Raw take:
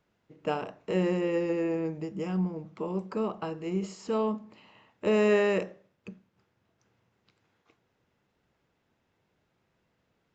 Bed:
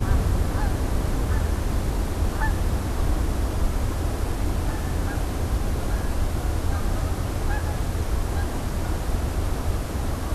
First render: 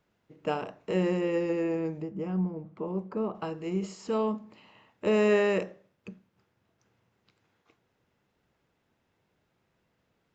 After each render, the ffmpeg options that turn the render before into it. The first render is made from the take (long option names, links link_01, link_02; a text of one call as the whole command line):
ffmpeg -i in.wav -filter_complex "[0:a]asettb=1/sr,asplit=3[link_01][link_02][link_03];[link_01]atrim=end=2.024[link_04];[link_02]atrim=start=2.02:end=3.35,asetpts=PTS-STARTPTS,afade=type=in:duration=0.004:curve=qsin,afade=type=out:start_time=1.326:duration=0.004:curve=qsin,lowpass=frequency=1100:poles=1[link_05];[link_03]atrim=start=3.346[link_06];[link_04][link_05]acrossfade=duration=0.004:curve1=hsin:curve2=qsin[link_07];[link_07][link_06]acrossfade=duration=0.004:curve1=qsin:curve2=hsin" out.wav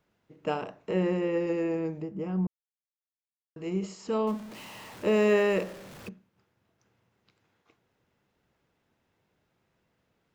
ffmpeg -i in.wav -filter_complex "[0:a]asettb=1/sr,asplit=3[link_01][link_02][link_03];[link_01]atrim=end=0.774[link_04];[link_02]atrim=start=0.77:end=1.47,asetpts=PTS-STARTPTS,afade=type=in:duration=0.004:curve=qsin,afade=type=out:start_time=0.696:duration=0.004:curve=qsin,acrossover=split=3000[link_05][link_06];[link_06]acompressor=threshold=-54dB:ratio=4:attack=1:release=60[link_07];[link_05][link_07]amix=inputs=2:normalize=0[link_08];[link_03]atrim=start=1.466[link_09];[link_04][link_08]acrossfade=duration=0.004:curve1=hsin:curve2=qsin[link_10];[link_10][link_09]acrossfade=duration=0.004:curve1=qsin:curve2=hsin,asettb=1/sr,asplit=3[link_11][link_12][link_13];[link_11]atrim=end=4.274[link_14];[link_12]atrim=start=4.27:end=6.09,asetpts=PTS-STARTPTS,afade=type=in:duration=0.004:curve=qsin,afade=type=out:start_time=1.816:duration=0.004:curve=qsin,aeval=exprs='val(0)+0.5*0.00891*sgn(val(0))':channel_layout=same[link_15];[link_13]atrim=start=6.086[link_16];[link_14][link_15]acrossfade=duration=0.004:curve1=hsin:curve2=qsin[link_17];[link_17][link_16]acrossfade=duration=0.004:curve1=qsin:curve2=hsin,asplit=3[link_18][link_19][link_20];[link_18]atrim=end=2.47,asetpts=PTS-STARTPTS,afade=type=out:start_time=2.466:duration=0.004:curve=hsin[link_21];[link_19]atrim=start=2.47:end=3.56,asetpts=PTS-STARTPTS,volume=0[link_22];[link_20]atrim=start=3.56,asetpts=PTS-STARTPTS,afade=type=in:duration=0.004:curve=hsin[link_23];[link_21][link_22][link_23]concat=n=3:v=0:a=1" out.wav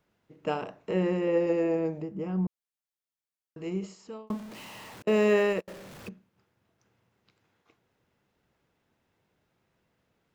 ffmpeg -i in.wav -filter_complex "[0:a]asettb=1/sr,asplit=3[link_01][link_02][link_03];[link_01]atrim=end=1.274[link_04];[link_02]atrim=start=1.27:end=2.02,asetpts=PTS-STARTPTS,afade=type=in:duration=0.004:curve=qsin,afade=type=out:start_time=0.746:duration=0.004:curve=qsin,equalizer=frequency=630:width_type=o:width=0.77:gain=7.5[link_05];[link_03]atrim=start=2.016[link_06];[link_04][link_05]acrossfade=duration=0.004:curve1=hsin:curve2=qsin[link_07];[link_07][link_06]acrossfade=duration=0.004:curve1=qsin:curve2=hsin,asettb=1/sr,asplit=3[link_08][link_09][link_10];[link_08]atrim=end=5.024[link_11];[link_09]atrim=start=5.02:end=5.68,asetpts=PTS-STARTPTS,afade=type=in:duration=0.004:curve=qsin,afade=type=out:start_time=0.656:duration=0.004:curve=qsin,agate=range=-39dB:threshold=-26dB:ratio=16:release=100:detection=peak[link_12];[link_10]atrim=start=5.676[link_13];[link_11][link_12]acrossfade=duration=0.004:curve1=hsin:curve2=qsin[link_14];[link_14][link_13]acrossfade=duration=0.004:curve1=qsin:curve2=hsin,asplit=2[link_15][link_16];[link_15]atrim=end=4.3,asetpts=PTS-STARTPTS,afade=type=out:start_time=3.63:duration=0.67[link_17];[link_16]atrim=start=4.3,asetpts=PTS-STARTPTS,afade=type=in:duration=0.004:curve=hsin[link_18];[link_17][link_18]concat=n=2:v=0:a=1" out.wav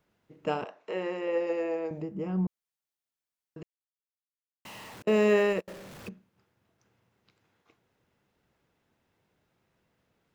ffmpeg -i in.wav -filter_complex "[0:a]asettb=1/sr,asplit=3[link_01][link_02][link_03];[link_01]atrim=end=0.644[link_04];[link_02]atrim=start=0.64:end=1.91,asetpts=PTS-STARTPTS,afade=type=in:duration=0.004:curve=qsin,afade=type=out:start_time=1.266:duration=0.004:curve=qsin,highpass=490,lowpass=6600[link_05];[link_03]atrim=start=1.906[link_06];[link_04][link_05]acrossfade=duration=0.004:curve1=hsin:curve2=qsin[link_07];[link_07][link_06]acrossfade=duration=0.004:curve1=qsin:curve2=hsin,asplit=3[link_08][link_09][link_10];[link_08]atrim=end=3.63,asetpts=PTS-STARTPTS,afade=type=out:start_time=3.626:duration=0.004:curve=hsin[link_11];[link_09]atrim=start=3.63:end=4.65,asetpts=PTS-STARTPTS,volume=0[link_12];[link_10]atrim=start=4.65,asetpts=PTS-STARTPTS,afade=type=in:duration=0.004:curve=hsin[link_13];[link_11][link_12][link_13]concat=n=3:v=0:a=1" out.wav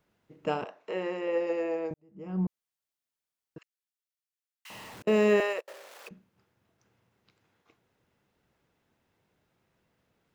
ffmpeg -i in.wav -filter_complex "[0:a]asettb=1/sr,asplit=3[link_01][link_02][link_03];[link_01]atrim=end=3.584[link_04];[link_02]atrim=start=3.58:end=4.7,asetpts=PTS-STARTPTS,afade=type=in:duration=0.004:curve=qsin,afade=type=out:start_time=1.116:duration=0.004:curve=qsin,highpass=frequency=1300:width=0.5412,highpass=frequency=1300:width=1.3066[link_05];[link_03]atrim=start=4.696[link_06];[link_04][link_05]acrossfade=duration=0.004:curve1=hsin:curve2=qsin[link_07];[link_07][link_06]acrossfade=duration=0.004:curve1=qsin:curve2=hsin,asettb=1/sr,asplit=3[link_08][link_09][link_10];[link_08]atrim=end=5.404[link_11];[link_09]atrim=start=5.4:end=6.11,asetpts=PTS-STARTPTS,afade=type=in:duration=0.004:curve=qsin,afade=type=out:start_time=0.706:duration=0.004:curve=qsin,highpass=frequency=490:width=0.5412,highpass=frequency=490:width=1.3066[link_12];[link_10]atrim=start=6.106[link_13];[link_11][link_12]acrossfade=duration=0.004:curve1=hsin:curve2=qsin[link_14];[link_14][link_13]acrossfade=duration=0.004:curve1=qsin:curve2=hsin,asplit=2[link_15][link_16];[link_15]atrim=end=1.94,asetpts=PTS-STARTPTS,afade=type=out:start_time=1.936:duration=0.004:curve=hsin[link_17];[link_16]atrim=start=1.94,asetpts=PTS-STARTPTS,afade=type=in:duration=0.48:curve=qua[link_18];[link_17][link_18]concat=n=2:v=0:a=1" out.wav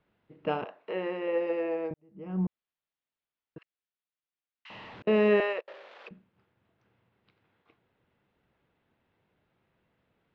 ffmpeg -i in.wav -af "lowpass=frequency=3700:width=0.5412,lowpass=frequency=3700:width=1.3066" out.wav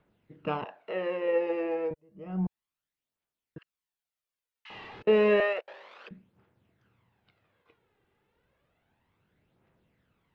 ffmpeg -i in.wav -af "aphaser=in_gain=1:out_gain=1:delay=2.6:decay=0.46:speed=0.31:type=triangular" out.wav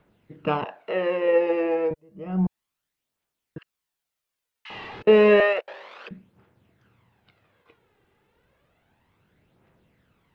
ffmpeg -i in.wav -af "volume=7dB" out.wav